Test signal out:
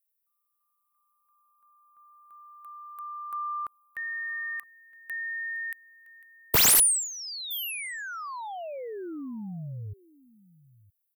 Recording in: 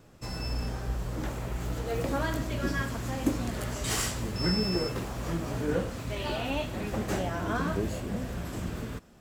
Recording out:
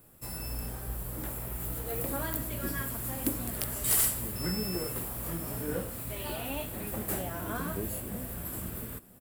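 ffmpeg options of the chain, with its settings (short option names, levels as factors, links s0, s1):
-af "aecho=1:1:966:0.0841,aexciter=amount=6.6:drive=9.2:freq=8900,aeval=exprs='(mod(2.99*val(0)+1,2)-1)/2.99':c=same,volume=0.531"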